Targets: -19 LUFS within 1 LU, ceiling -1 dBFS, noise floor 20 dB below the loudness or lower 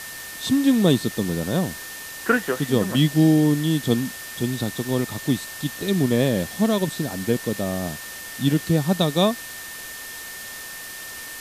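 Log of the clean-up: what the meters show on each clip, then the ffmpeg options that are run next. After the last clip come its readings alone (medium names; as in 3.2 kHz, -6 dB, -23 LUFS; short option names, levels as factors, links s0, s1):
steady tone 1.8 kHz; tone level -38 dBFS; noise floor -36 dBFS; noise floor target -43 dBFS; loudness -22.5 LUFS; peak level -5.0 dBFS; loudness target -19.0 LUFS
-> -af "bandreject=f=1800:w=30"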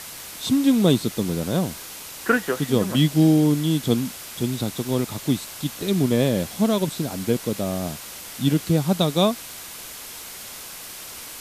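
steady tone not found; noise floor -38 dBFS; noise floor target -43 dBFS
-> -af "afftdn=nr=6:nf=-38"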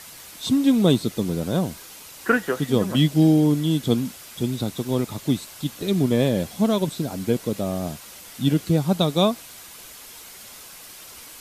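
noise floor -43 dBFS; loudness -22.5 LUFS; peak level -5.5 dBFS; loudness target -19.0 LUFS
-> -af "volume=1.5"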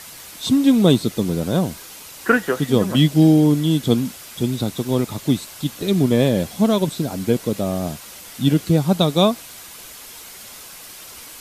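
loudness -19.0 LUFS; peak level -2.0 dBFS; noise floor -39 dBFS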